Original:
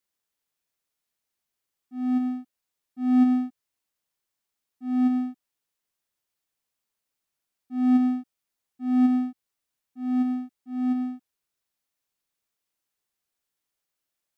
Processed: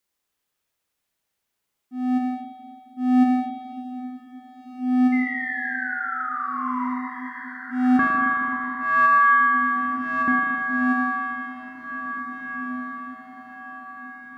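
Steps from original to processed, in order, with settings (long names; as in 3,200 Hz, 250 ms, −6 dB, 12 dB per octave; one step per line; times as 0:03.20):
0:05.12–0:06.87: sound drawn into the spectrogram fall 960–2,100 Hz −35 dBFS
0:07.99–0:10.28: ring modulation 1,400 Hz
on a send: feedback delay with all-pass diffusion 1,917 ms, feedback 42%, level −9.5 dB
on the sum: spring reverb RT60 2.8 s, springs 38/54 ms, chirp 75 ms, DRR 0 dB
level +4 dB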